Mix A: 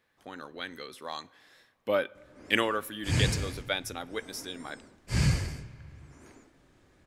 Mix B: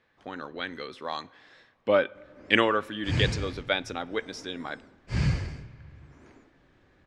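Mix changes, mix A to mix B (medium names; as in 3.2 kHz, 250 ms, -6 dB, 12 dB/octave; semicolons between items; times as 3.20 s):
speech +5.5 dB; master: add distance through air 130 m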